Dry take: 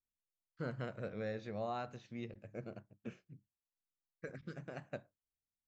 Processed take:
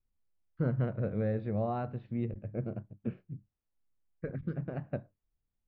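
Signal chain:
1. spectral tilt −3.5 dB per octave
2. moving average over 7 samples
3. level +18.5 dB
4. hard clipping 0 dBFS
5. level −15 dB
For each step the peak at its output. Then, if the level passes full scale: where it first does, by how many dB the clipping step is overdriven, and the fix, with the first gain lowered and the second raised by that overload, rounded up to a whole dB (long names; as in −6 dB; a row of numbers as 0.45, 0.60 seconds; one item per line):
−23.0, −23.0, −4.5, −4.5, −19.5 dBFS
no step passes full scale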